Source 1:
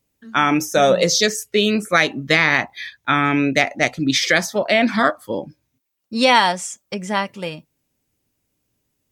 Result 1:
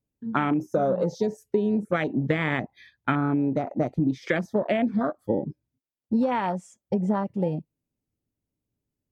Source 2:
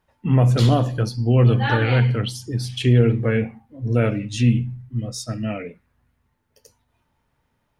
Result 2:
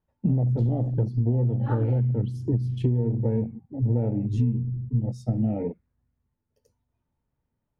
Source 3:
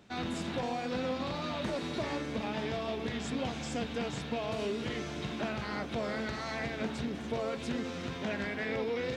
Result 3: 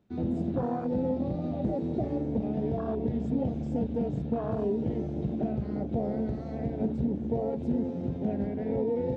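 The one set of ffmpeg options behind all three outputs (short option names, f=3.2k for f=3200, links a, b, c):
-af "tiltshelf=f=750:g=7,acompressor=threshold=-22dB:ratio=16,afwtdn=0.0282,volume=2dB"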